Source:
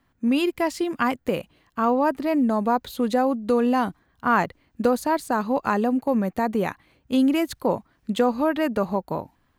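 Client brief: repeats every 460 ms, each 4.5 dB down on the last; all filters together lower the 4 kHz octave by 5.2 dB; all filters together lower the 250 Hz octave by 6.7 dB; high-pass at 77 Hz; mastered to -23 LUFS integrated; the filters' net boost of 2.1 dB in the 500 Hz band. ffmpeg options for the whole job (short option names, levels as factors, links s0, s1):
-af "highpass=77,equalizer=f=250:t=o:g=-9,equalizer=f=500:t=o:g=4.5,equalizer=f=4000:t=o:g=-7.5,aecho=1:1:460|920|1380|1840|2300|2760|3220|3680|4140:0.596|0.357|0.214|0.129|0.0772|0.0463|0.0278|0.0167|0.01"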